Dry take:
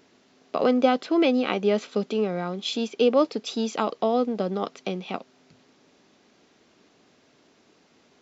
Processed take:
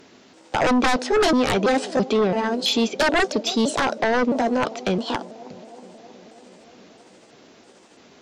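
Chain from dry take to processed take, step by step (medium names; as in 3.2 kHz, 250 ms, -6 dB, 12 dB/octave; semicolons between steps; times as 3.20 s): pitch shift switched off and on +4 st, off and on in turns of 332 ms; bucket-brigade echo 319 ms, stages 2048, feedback 73%, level -22.5 dB; sine folder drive 13 dB, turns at -7 dBFS; trim -7.5 dB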